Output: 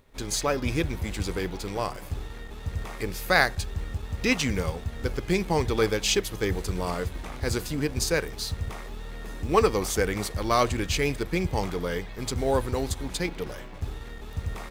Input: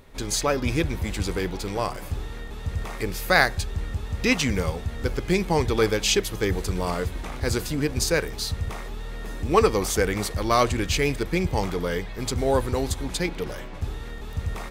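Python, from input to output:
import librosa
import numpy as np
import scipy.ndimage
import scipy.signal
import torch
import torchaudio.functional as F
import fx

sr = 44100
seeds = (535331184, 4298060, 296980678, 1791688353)

y = fx.law_mismatch(x, sr, coded='A')
y = F.gain(torch.from_numpy(y), -2.0).numpy()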